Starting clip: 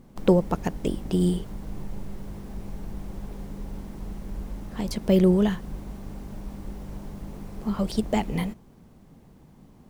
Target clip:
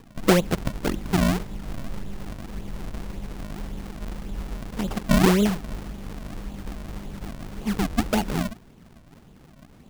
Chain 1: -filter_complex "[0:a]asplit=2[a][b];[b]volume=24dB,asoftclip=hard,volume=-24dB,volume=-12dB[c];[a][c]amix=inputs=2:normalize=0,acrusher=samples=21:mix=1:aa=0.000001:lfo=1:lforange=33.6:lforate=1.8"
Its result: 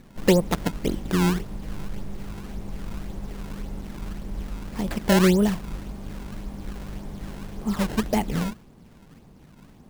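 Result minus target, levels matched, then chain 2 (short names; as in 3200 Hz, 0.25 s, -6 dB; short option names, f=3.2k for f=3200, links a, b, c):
decimation with a swept rate: distortion -9 dB
-filter_complex "[0:a]asplit=2[a][b];[b]volume=24dB,asoftclip=hard,volume=-24dB,volume=-12dB[c];[a][c]amix=inputs=2:normalize=0,acrusher=samples=60:mix=1:aa=0.000001:lfo=1:lforange=96:lforate=1.8"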